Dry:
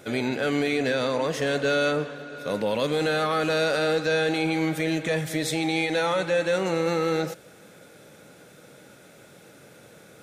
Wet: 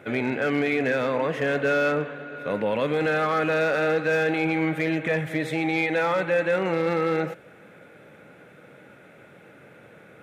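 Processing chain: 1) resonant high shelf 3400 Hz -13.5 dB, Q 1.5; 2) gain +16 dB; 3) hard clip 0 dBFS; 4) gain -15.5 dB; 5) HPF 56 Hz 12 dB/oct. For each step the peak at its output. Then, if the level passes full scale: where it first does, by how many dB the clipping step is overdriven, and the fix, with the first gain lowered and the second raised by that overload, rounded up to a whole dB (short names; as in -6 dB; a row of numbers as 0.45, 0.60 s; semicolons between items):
-12.0, +4.0, 0.0, -15.5, -14.0 dBFS; step 2, 4.0 dB; step 2 +12 dB, step 4 -11.5 dB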